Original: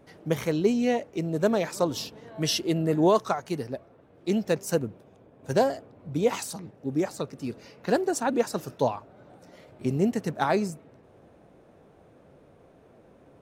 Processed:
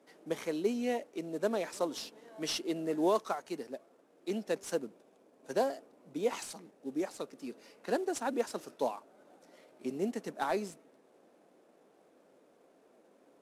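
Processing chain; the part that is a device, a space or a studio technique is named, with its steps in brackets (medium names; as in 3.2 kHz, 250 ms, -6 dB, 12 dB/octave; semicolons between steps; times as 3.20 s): early wireless headset (high-pass 230 Hz 24 dB/octave; CVSD coder 64 kbps); trim -7.5 dB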